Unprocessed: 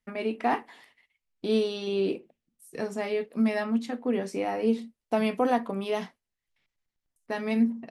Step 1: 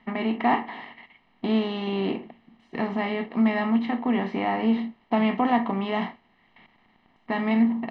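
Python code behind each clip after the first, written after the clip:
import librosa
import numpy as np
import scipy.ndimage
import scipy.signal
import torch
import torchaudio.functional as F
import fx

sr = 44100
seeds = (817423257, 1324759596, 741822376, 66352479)

y = fx.bin_compress(x, sr, power=0.6)
y = scipy.signal.sosfilt(scipy.signal.butter(4, 3300.0, 'lowpass', fs=sr, output='sos'), y)
y = y + 0.62 * np.pad(y, (int(1.0 * sr / 1000.0), 0))[:len(y)]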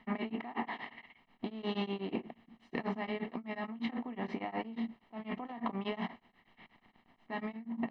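y = fx.over_compress(x, sr, threshold_db=-30.0, ratio=-1.0)
y = y * np.abs(np.cos(np.pi * 8.3 * np.arange(len(y)) / sr))
y = y * 10.0 ** (-6.0 / 20.0)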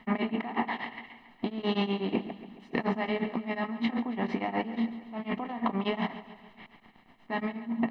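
y = fx.echo_feedback(x, sr, ms=139, feedback_pct=56, wet_db=-14.0)
y = y * 10.0 ** (7.0 / 20.0)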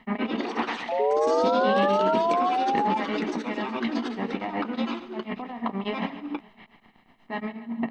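y = fx.spec_paint(x, sr, seeds[0], shape='rise', start_s=0.99, length_s=1.99, low_hz=420.0, high_hz=880.0, level_db=-25.0)
y = fx.echo_pitch(y, sr, ms=130, semitones=4, count=3, db_per_echo=-3.0)
y = fx.end_taper(y, sr, db_per_s=420.0)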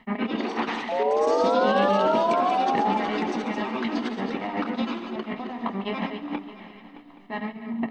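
y = fx.reverse_delay(x, sr, ms=172, wet_db=-7)
y = fx.echo_swing(y, sr, ms=824, ratio=3, feedback_pct=31, wet_db=-16.0)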